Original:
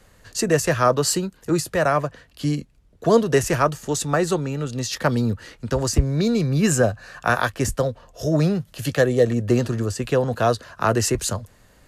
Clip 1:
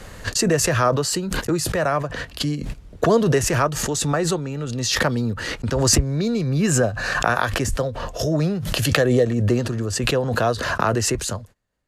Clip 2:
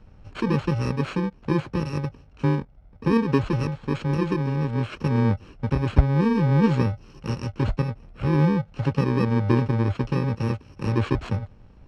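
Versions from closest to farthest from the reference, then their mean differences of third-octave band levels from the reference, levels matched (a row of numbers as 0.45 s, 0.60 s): 1, 2; 5.0 dB, 8.5 dB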